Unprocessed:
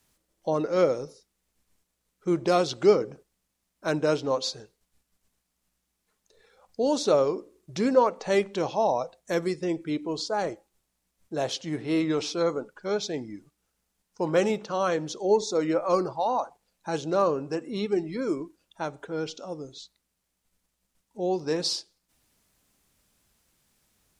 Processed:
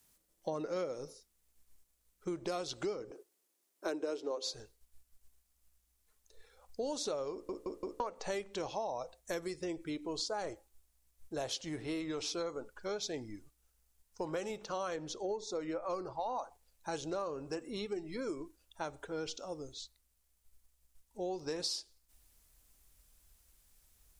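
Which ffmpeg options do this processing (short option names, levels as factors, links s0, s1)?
-filter_complex "[0:a]asettb=1/sr,asplit=3[s0][s1][s2];[s0]atrim=end=3.104[s3];[s1]atrim=start=3.1:end=4.54,asetpts=PTS-STARTPTS,afade=t=in:d=0.004:c=qsin,afade=t=out:st=1.436:d=0.004:c=qsin,highpass=f=360:t=q:w=3.6[s4];[s2]atrim=start=4.536[s5];[s3][s4]acrossfade=d=0.004:c1=hsin:c2=qsin[s6];[s6][s5]acrossfade=d=0.004:c1=qsin:c2=hsin,asettb=1/sr,asplit=3[s7][s8][s9];[s7]atrim=end=14.964[s10];[s8]atrim=start=14.96:end=16.36,asetpts=PTS-STARTPTS,afade=t=in:d=0.004:c=qsin,afade=t=out:st=1.396:d=0.004:c=qsin,lowpass=f=3900:p=1[s11];[s9]atrim=start=16.356[s12];[s10][s11]acrossfade=d=0.004:c1=hsin:c2=qsin[s13];[s13][s12]acrossfade=d=0.004:c1=qsin:c2=hsin,asplit=5[s14][s15][s16][s17][s18];[s14]atrim=end=7.492[s19];[s15]atrim=start=7.318:end=7.492[s20];[s16]atrim=start=7.318:end=7.492[s21];[s17]atrim=start=7.318:end=7.492[s22];[s18]atrim=start=7.998[s23];[s19][s20]acrossfade=d=0.004:c1=hsin:c2=hsin[s24];[s24][s21]acrossfade=d=0.004:c1=hsin:c2=hsin[s25];[s25][s22]acrossfade=d=0.004:c1=hsin:c2=hsin[s26];[s26][s23]acrossfade=d=0.004:c1=hsin:c2=hsin,highshelf=f=7400:g=10.5,acompressor=threshold=0.0398:ratio=10,asubboost=boost=10:cutoff=52,volume=0.562"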